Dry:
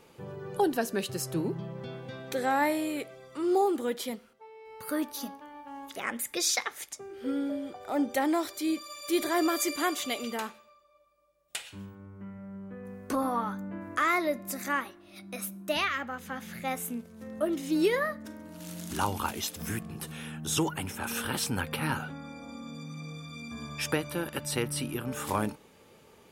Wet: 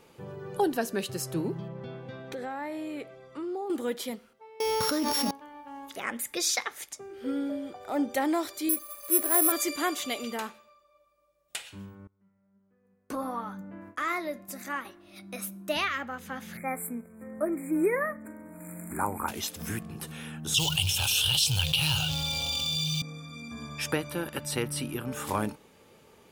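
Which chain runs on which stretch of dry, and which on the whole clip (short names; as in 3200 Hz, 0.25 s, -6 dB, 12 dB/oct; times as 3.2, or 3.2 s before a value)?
1.68–3.7 LPF 2600 Hz 6 dB/oct + compressor 4:1, threshold -33 dBFS
4.6–5.31 sample sorter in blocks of 8 samples + fast leveller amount 100%
8.69–9.52 median filter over 15 samples + low shelf 220 Hz -10 dB + careless resampling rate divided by 4×, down filtered, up zero stuff
12.07–14.85 gate with hold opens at -32 dBFS, closes at -37 dBFS + flange 1.5 Hz, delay 2.2 ms, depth 5.4 ms, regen +77%
16.57–19.28 brick-wall FIR band-stop 2500–7100 Hz + bell 93 Hz -6 dB 0.81 oct
20.54–23.02 short-mantissa float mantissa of 2-bit + EQ curve 140 Hz 0 dB, 220 Hz -29 dB, 730 Hz -11 dB, 1200 Hz -17 dB, 2000 Hz -18 dB, 2900 Hz +11 dB, 9800 Hz -1 dB + fast leveller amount 70%
whole clip: dry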